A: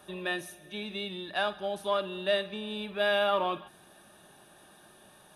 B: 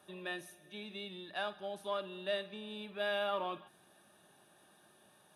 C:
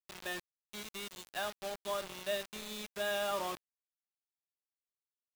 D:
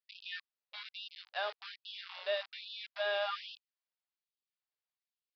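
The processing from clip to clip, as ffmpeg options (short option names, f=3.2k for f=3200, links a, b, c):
-af "highpass=89,volume=-8.5dB"
-af "acrusher=bits=6:mix=0:aa=0.000001"
-af "aresample=11025,aresample=44100,afftfilt=real='re*gte(b*sr/1024,390*pow(2600/390,0.5+0.5*sin(2*PI*1.2*pts/sr)))':imag='im*gte(b*sr/1024,390*pow(2600/390,0.5+0.5*sin(2*PI*1.2*pts/sr)))':win_size=1024:overlap=0.75,volume=1.5dB"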